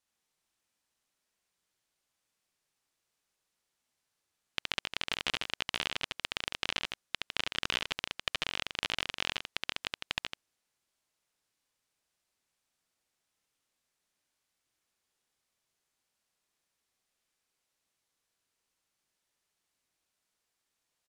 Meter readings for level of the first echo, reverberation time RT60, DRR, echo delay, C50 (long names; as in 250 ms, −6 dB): −3.0 dB, no reverb audible, no reverb audible, 70 ms, no reverb audible